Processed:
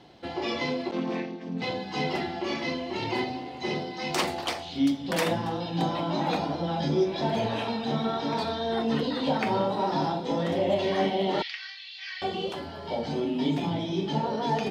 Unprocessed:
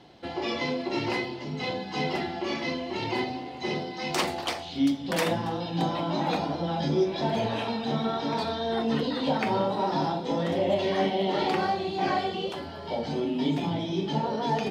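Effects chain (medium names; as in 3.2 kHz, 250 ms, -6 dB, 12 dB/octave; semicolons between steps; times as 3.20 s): 0.91–1.62 s: vocoder on a held chord major triad, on F3; 11.42–12.22 s: elliptic band-pass 1.8–5.6 kHz, stop band 60 dB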